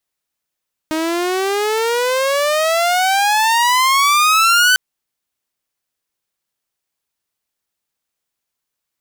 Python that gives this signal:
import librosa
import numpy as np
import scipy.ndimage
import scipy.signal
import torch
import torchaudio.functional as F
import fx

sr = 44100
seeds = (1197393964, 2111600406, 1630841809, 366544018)

y = fx.riser_tone(sr, length_s=3.85, level_db=-6.5, wave='saw', hz=311.0, rise_st=27.5, swell_db=8)